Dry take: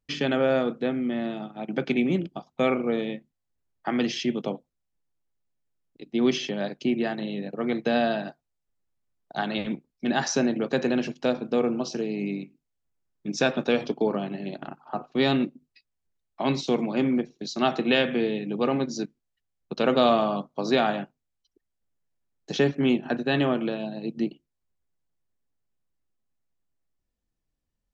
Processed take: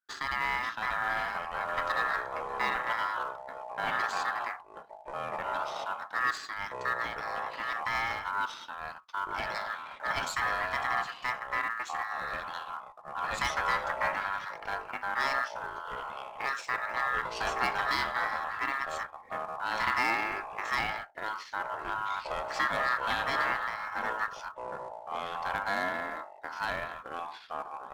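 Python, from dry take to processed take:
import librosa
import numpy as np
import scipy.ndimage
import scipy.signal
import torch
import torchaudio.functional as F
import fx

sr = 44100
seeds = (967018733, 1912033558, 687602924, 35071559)

p1 = fx.octave_divider(x, sr, octaves=1, level_db=-4.0)
p2 = fx.quant_companded(p1, sr, bits=4)
p3 = p1 + (p2 * 10.0 ** (-12.0 / 20.0))
p4 = fx.cheby_harmonics(p3, sr, harmonics=(8,), levels_db=(-23,), full_scale_db=-5.0)
p5 = p4 * np.sin(2.0 * np.pi * 1500.0 * np.arange(len(p4)) / sr)
p6 = fx.echo_pitch(p5, sr, ms=508, semitones=-4, count=3, db_per_echo=-3.0)
y = p6 * 10.0 ** (-8.5 / 20.0)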